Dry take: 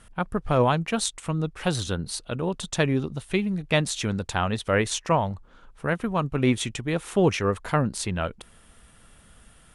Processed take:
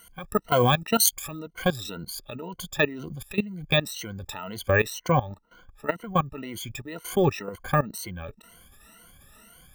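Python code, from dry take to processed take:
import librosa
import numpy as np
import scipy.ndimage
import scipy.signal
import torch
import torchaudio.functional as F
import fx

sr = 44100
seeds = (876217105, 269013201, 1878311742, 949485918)

y = fx.spec_ripple(x, sr, per_octave=1.9, drift_hz=2.0, depth_db=24)
y = np.repeat(y[::2], 2)[:len(y)]
y = fx.high_shelf(y, sr, hz=2300.0, db=fx.steps((0.0, 11.0), (1.39, 3.0)))
y = fx.level_steps(y, sr, step_db=17)
y = y * librosa.db_to_amplitude(-2.0)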